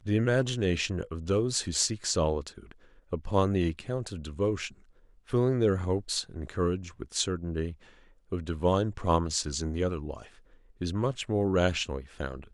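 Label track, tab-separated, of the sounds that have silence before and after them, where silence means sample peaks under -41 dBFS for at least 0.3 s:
3.120000	4.680000	sound
5.290000	7.730000	sound
8.320000	10.240000	sound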